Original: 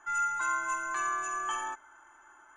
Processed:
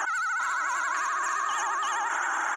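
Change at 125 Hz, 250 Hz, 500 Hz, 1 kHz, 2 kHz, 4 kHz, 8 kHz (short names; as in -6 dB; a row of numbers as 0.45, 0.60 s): n/a, +2.0 dB, +4.5 dB, +5.0 dB, +7.5 dB, +9.0 dB, +5.0 dB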